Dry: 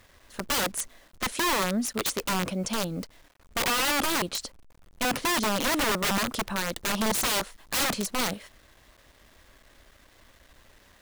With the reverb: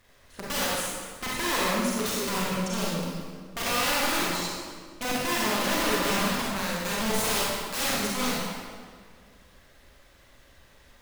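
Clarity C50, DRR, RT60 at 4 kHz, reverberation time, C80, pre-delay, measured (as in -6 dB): -3.0 dB, -6.0 dB, 1.4 s, 1.8 s, 0.0 dB, 31 ms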